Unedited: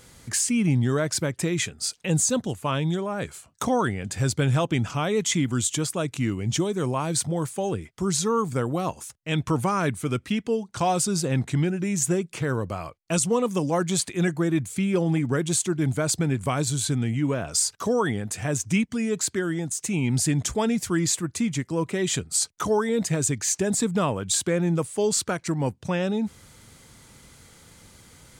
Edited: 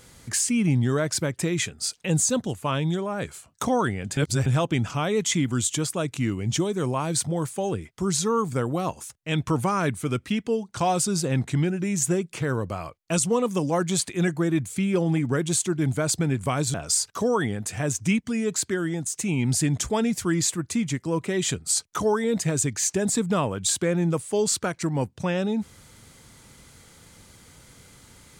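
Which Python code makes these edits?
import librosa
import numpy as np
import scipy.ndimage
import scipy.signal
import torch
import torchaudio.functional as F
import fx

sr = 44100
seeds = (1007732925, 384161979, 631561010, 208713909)

y = fx.edit(x, sr, fx.reverse_span(start_s=4.17, length_s=0.29),
    fx.cut(start_s=16.74, length_s=0.65), tone=tone)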